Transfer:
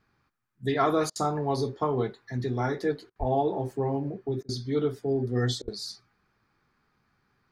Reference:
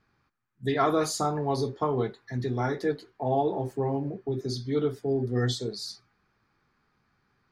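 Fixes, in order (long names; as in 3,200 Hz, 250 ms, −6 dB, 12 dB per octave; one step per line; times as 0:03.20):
high-pass at the plosives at 0:03.19/0:05.62
repair the gap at 0:01.10/0:03.10/0:04.43/0:05.62, 56 ms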